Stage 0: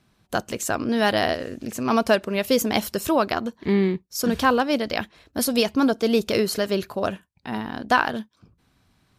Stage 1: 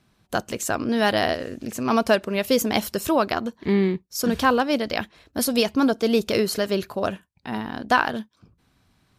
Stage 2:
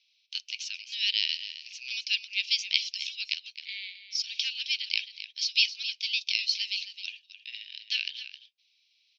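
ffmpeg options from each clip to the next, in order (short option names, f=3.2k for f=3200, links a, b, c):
-af anull
-af "asuperpass=centerf=3700:order=12:qfactor=1.1,aecho=1:1:265:0.251,volume=4dB"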